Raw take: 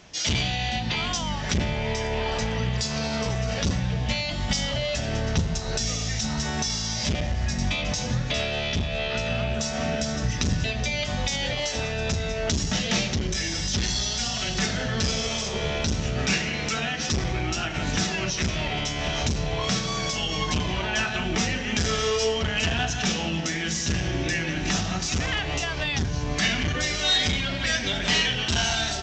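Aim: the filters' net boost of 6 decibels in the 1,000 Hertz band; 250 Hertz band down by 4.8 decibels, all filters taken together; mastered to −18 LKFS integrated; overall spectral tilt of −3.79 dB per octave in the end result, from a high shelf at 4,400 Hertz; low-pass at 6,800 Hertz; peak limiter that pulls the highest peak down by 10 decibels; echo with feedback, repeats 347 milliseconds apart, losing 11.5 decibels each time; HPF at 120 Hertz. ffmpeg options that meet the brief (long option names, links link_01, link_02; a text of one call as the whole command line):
ffmpeg -i in.wav -af "highpass=120,lowpass=6800,equalizer=frequency=250:width_type=o:gain=-6.5,equalizer=frequency=1000:width_type=o:gain=9,highshelf=frequency=4400:gain=-8.5,alimiter=limit=-21dB:level=0:latency=1,aecho=1:1:347|694|1041:0.266|0.0718|0.0194,volume=11.5dB" out.wav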